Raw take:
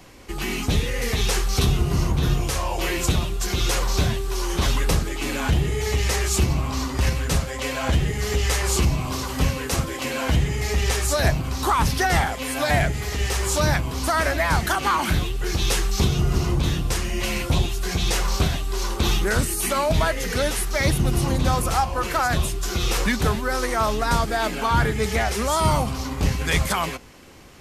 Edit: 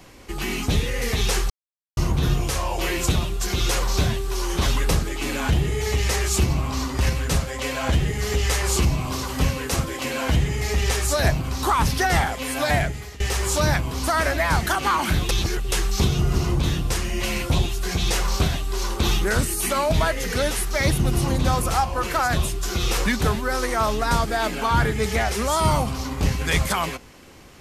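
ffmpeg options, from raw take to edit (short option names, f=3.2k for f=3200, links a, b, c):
-filter_complex "[0:a]asplit=6[a][b][c][d][e][f];[a]atrim=end=1.5,asetpts=PTS-STARTPTS,afade=t=out:st=1.496:d=0.004:c=hsin[g];[b]atrim=start=1.5:end=1.97,asetpts=PTS-STARTPTS,volume=0[h];[c]atrim=start=1.97:end=13.2,asetpts=PTS-STARTPTS,afade=t=in:d=0.004:c=hsin,afade=t=out:st=10.73:d=0.5:silence=0.125893[i];[d]atrim=start=13.2:end=15.292,asetpts=PTS-STARTPTS,afade=t=in:d=0.004:c=hsin:silence=0.125893[j];[e]atrim=start=15.288:end=15.722,asetpts=PTS-STARTPTS,areverse[k];[f]atrim=start=15.718[l];[g][h][i][j]concat=n=4:v=0:a=1[m];[m][k]acrossfade=d=0.004:c1=hsin:c2=hsin[n];[n][l]acrossfade=d=0.004:c1=hsin:c2=hsin"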